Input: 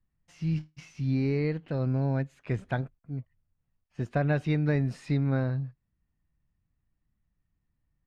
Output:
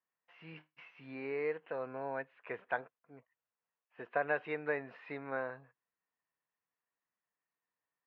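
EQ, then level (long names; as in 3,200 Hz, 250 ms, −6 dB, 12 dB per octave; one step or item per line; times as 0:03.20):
loudspeaker in its box 450–3,100 Hz, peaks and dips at 470 Hz +9 dB, 710 Hz +4 dB, 1,000 Hz +7 dB, 1,700 Hz +3 dB, 2,700 Hz +4 dB
parametric band 1,500 Hz +6.5 dB 1.7 octaves
−9.0 dB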